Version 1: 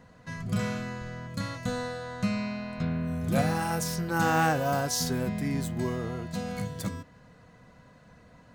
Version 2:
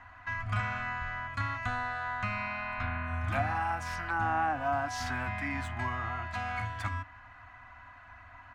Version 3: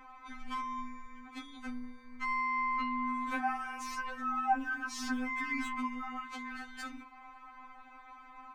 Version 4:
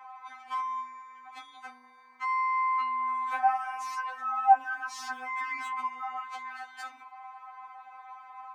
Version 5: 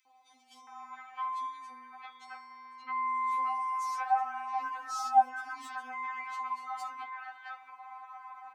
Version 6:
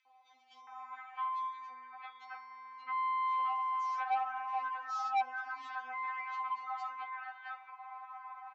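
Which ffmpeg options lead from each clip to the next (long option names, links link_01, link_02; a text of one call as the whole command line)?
ffmpeg -i in.wav -filter_complex "[0:a]firequalizer=gain_entry='entry(100,0);entry(150,-27);entry(290,-9);entry(430,-30);entry(710,2);entry(1200,7);entry(2500,4);entry(4000,-10);entry(14000,-25)':delay=0.05:min_phase=1,acrossover=split=590[link_01][link_02];[link_02]acompressor=threshold=-36dB:ratio=12[link_03];[link_01][link_03]amix=inputs=2:normalize=0,volume=4dB" out.wav
ffmpeg -i in.wav -filter_complex "[0:a]asplit=2[link_01][link_02];[link_02]alimiter=level_in=3dB:limit=-24dB:level=0:latency=1:release=109,volume=-3dB,volume=2dB[link_03];[link_01][link_03]amix=inputs=2:normalize=0,afftfilt=real='re*3.46*eq(mod(b,12),0)':imag='im*3.46*eq(mod(b,12),0)':win_size=2048:overlap=0.75,volume=-3.5dB" out.wav
ffmpeg -i in.wav -af "highpass=frequency=810:width_type=q:width=3.9,volume=-1dB" out.wav
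ffmpeg -i in.wav -filter_complex "[0:a]acrossover=split=1200|2800[link_01][link_02][link_03];[link_02]acompressor=threshold=-46dB:ratio=6[link_04];[link_01][link_04][link_03]amix=inputs=3:normalize=0,acrossover=split=530|3400[link_05][link_06][link_07];[link_05]adelay=50[link_08];[link_06]adelay=670[link_09];[link_08][link_09][link_07]amix=inputs=3:normalize=0" out.wav
ffmpeg -i in.wav -af "aresample=16000,asoftclip=type=tanh:threshold=-26dB,aresample=44100,highpass=510,lowpass=3400" out.wav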